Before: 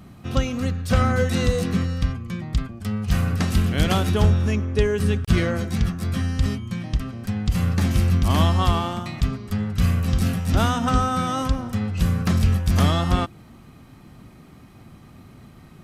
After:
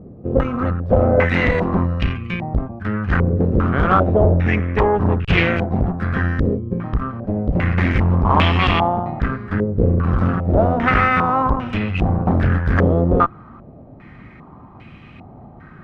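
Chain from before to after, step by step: added harmonics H 5 -16 dB, 6 -12 dB, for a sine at -7 dBFS; stepped low-pass 2.5 Hz 480–2600 Hz; gain -1 dB

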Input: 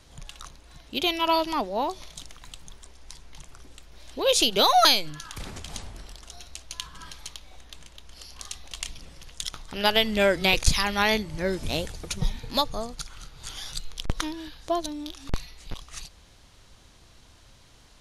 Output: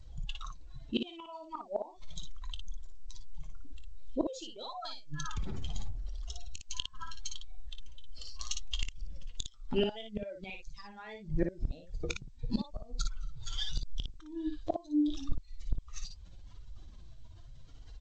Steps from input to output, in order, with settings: spectral contrast raised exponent 2.1; flange 0.78 Hz, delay 1 ms, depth 8.9 ms, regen +42%; flipped gate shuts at -26 dBFS, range -28 dB; on a send: early reflections 23 ms -17 dB, 57 ms -5.5 dB; on the sum: gain +8 dB; G.722 64 kbps 16000 Hz

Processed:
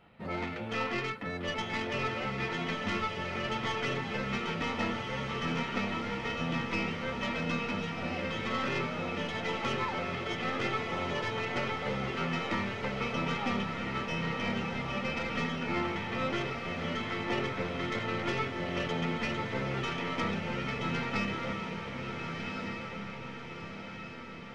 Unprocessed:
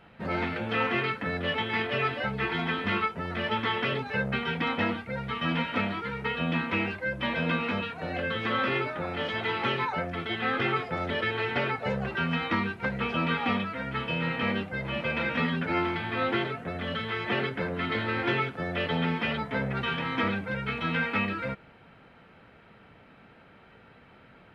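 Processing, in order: tracing distortion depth 0.054 ms; notch 1600 Hz, Q 8.1; diffused feedback echo 1.405 s, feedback 56%, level -4 dB; gain -5.5 dB

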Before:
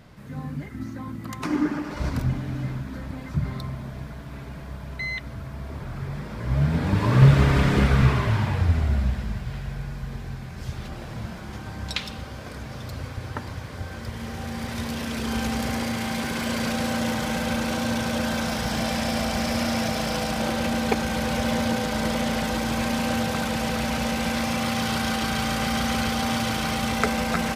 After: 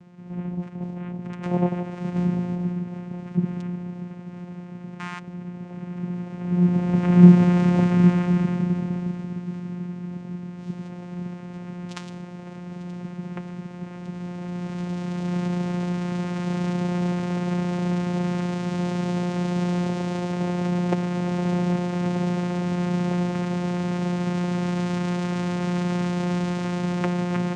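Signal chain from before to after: 2.13–2.55 flutter echo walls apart 3.2 m, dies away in 0.54 s; vocoder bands 4, saw 177 Hz; gain +2.5 dB

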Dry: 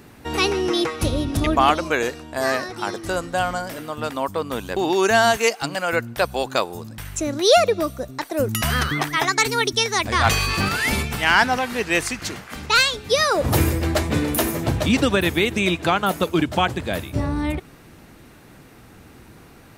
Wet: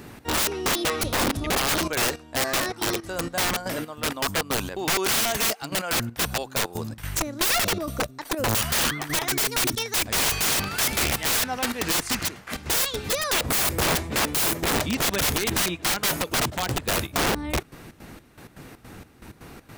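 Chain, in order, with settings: step gate "xx.xx..x." 160 bpm -12 dB; wrapped overs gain 21 dB; gain +3.5 dB

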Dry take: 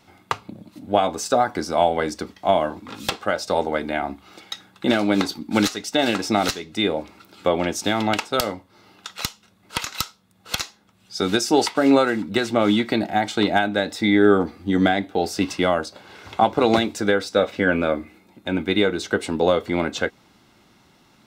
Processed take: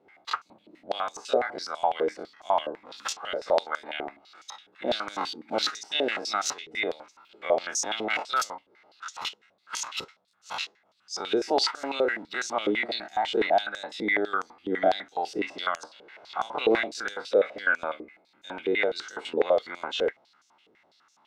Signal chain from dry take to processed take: spectral dilation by 60 ms; stepped band-pass 12 Hz 440–6300 Hz

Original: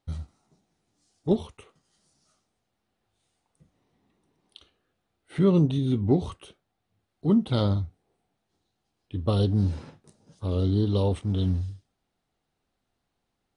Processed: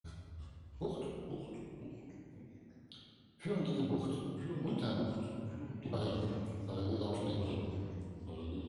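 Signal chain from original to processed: expander -58 dBFS; reverb removal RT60 1.1 s; low shelf 360 Hz -9.5 dB; compressor 10:1, threshold -30 dBFS, peak gain reduction 9 dB; flange 0.43 Hz, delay 2.1 ms, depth 6.5 ms, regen -51%; tempo 1.5×; reverb RT60 2.2 s, pre-delay 6 ms, DRR -6.5 dB; echoes that change speed 0.342 s, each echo -3 st, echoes 3, each echo -6 dB; speed mistake 24 fps film run at 25 fps; core saturation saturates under 270 Hz; gain -3.5 dB

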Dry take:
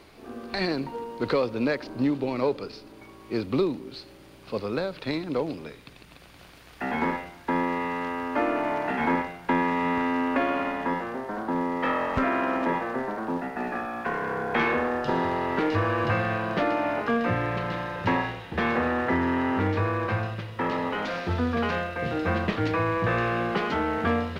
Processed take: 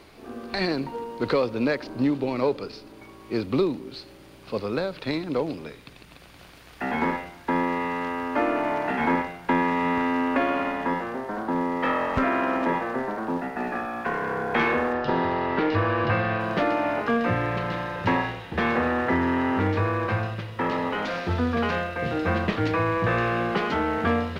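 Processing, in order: 14.93–16.4 LPF 5100 Hz 24 dB/oct; gain +1.5 dB

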